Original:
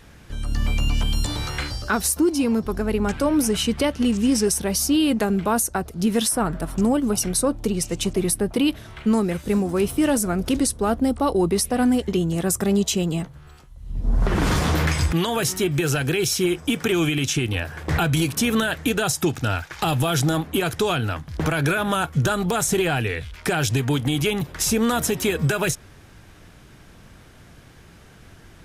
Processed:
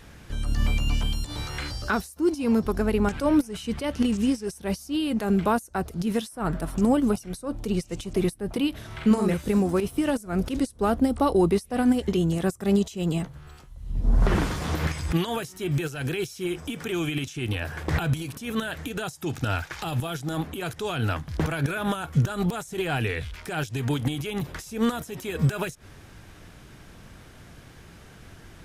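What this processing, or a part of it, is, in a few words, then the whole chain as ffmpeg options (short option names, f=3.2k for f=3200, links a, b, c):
de-esser from a sidechain: -filter_complex "[0:a]asplit=3[a][b][c];[a]afade=t=out:st=8.9:d=0.02[d];[b]asplit=2[e][f];[f]adelay=47,volume=-3dB[g];[e][g]amix=inputs=2:normalize=0,afade=t=in:st=8.9:d=0.02,afade=t=out:st=9.33:d=0.02[h];[c]afade=t=in:st=9.33:d=0.02[i];[d][h][i]amix=inputs=3:normalize=0,asplit=2[j][k];[k]highpass=5.8k,apad=whole_len=1263176[l];[j][l]sidechaincompress=threshold=-41dB:ratio=16:attack=4:release=98"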